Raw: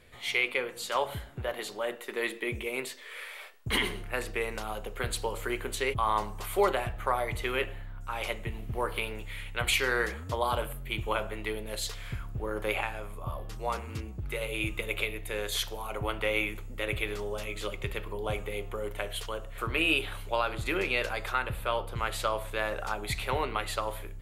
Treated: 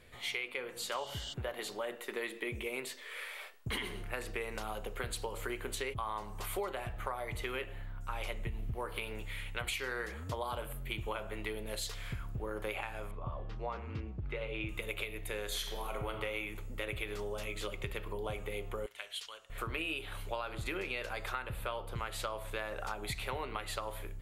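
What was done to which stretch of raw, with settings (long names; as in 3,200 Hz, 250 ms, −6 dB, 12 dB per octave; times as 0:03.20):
0:00.97–0:01.31: healed spectral selection 2,800–8,600 Hz before
0:08.09–0:08.75: low-shelf EQ 100 Hz +9 dB
0:13.11–0:14.69: high-frequency loss of the air 240 metres
0:15.45–0:16.10: thrown reverb, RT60 0.99 s, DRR 4.5 dB
0:18.86–0:19.50: resonant band-pass 4,500 Hz, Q 0.87
whole clip: downward compressor 6 to 1, threshold −33 dBFS; level −1.5 dB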